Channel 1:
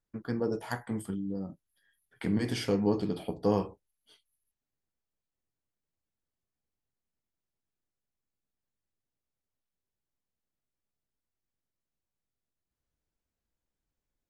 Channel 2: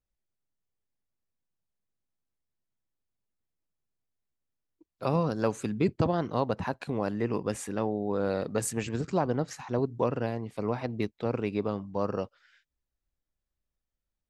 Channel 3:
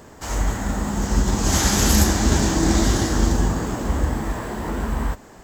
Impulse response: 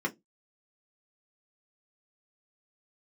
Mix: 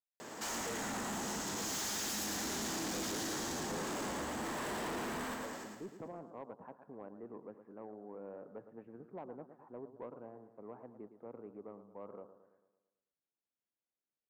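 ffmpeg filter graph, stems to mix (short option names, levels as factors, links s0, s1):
-filter_complex "[0:a]adelay=250,volume=0.355[s0];[1:a]lowpass=f=1300:w=0.5412,lowpass=f=1300:w=1.3066,volume=0.141,asplit=2[s1][s2];[s2]volume=0.251[s3];[2:a]highshelf=f=2400:g=9,acompressor=threshold=0.0562:ratio=3,adelay=200,volume=0.75,asplit=2[s4][s5];[s5]volume=0.596[s6];[s3][s6]amix=inputs=2:normalize=0,aecho=0:1:111|222|333|444|555|666|777|888:1|0.52|0.27|0.141|0.0731|0.038|0.0198|0.0103[s7];[s0][s1][s4][s7]amix=inputs=4:normalize=0,highpass=230,highshelf=f=6700:g=-8.5,asoftclip=type=tanh:threshold=0.015"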